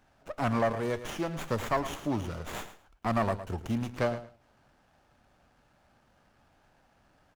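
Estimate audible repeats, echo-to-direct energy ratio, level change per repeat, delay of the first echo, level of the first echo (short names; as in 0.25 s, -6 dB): 2, -12.5 dB, -15.0 dB, 0.11 s, -12.5 dB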